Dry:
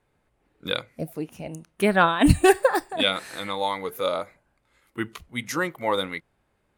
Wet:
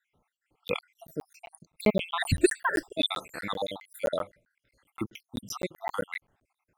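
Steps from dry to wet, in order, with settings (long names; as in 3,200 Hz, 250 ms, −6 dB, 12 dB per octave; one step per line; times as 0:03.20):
time-frequency cells dropped at random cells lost 70%
regular buffer underruns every 0.13 s, samples 512, zero, from 0:00.68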